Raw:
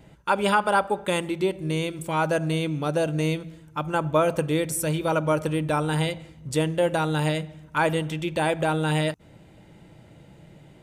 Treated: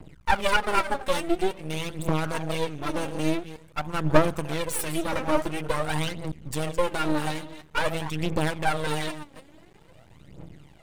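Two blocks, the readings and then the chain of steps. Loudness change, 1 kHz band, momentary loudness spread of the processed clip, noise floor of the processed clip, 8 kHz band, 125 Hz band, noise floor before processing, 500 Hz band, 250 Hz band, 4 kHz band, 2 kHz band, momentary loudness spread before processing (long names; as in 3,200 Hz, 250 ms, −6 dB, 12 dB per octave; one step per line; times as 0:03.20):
−2.5 dB, −2.0 dB, 10 LU, −53 dBFS, −1.5 dB, −4.5 dB, −52 dBFS, −3.5 dB, −2.5 dB, −0.5 dB, −1.0 dB, 7 LU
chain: delay that plays each chunk backwards 162 ms, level −13 dB
phase shifter 0.48 Hz, delay 3.9 ms, feedback 76%
half-wave rectification
level −1 dB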